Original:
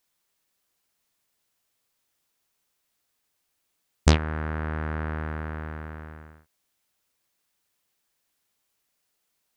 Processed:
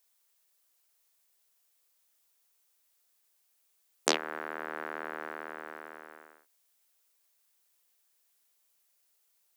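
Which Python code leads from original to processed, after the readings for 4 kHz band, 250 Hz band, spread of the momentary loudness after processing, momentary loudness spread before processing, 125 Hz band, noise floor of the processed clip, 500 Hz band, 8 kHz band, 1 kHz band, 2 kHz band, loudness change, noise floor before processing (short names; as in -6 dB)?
-0.5 dB, -13.5 dB, 19 LU, 19 LU, -37.5 dB, -73 dBFS, -3.5 dB, +2.0 dB, -3.0 dB, -2.5 dB, -7.5 dB, -77 dBFS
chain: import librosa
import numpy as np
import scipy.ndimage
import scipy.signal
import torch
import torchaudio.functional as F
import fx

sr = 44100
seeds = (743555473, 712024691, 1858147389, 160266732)

y = scipy.signal.sosfilt(scipy.signal.butter(4, 360.0, 'highpass', fs=sr, output='sos'), x)
y = fx.high_shelf(y, sr, hz=6200.0, db=9.0)
y = y * 10.0 ** (-3.0 / 20.0)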